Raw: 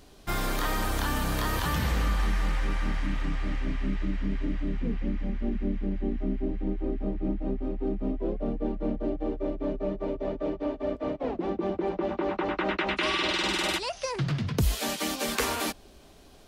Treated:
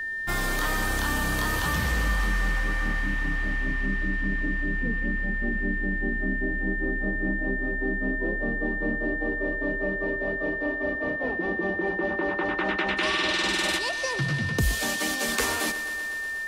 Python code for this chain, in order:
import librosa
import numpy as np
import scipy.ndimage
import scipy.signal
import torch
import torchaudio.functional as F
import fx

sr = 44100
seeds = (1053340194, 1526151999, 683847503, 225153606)

y = fx.dynamic_eq(x, sr, hz=7800.0, q=0.73, threshold_db=-47.0, ratio=4.0, max_db=4)
y = fx.echo_thinned(y, sr, ms=122, feedback_pct=82, hz=170.0, wet_db=-13.5)
y = y + 10.0 ** (-29.0 / 20.0) * np.sin(2.0 * np.pi * 1800.0 * np.arange(len(y)) / sr)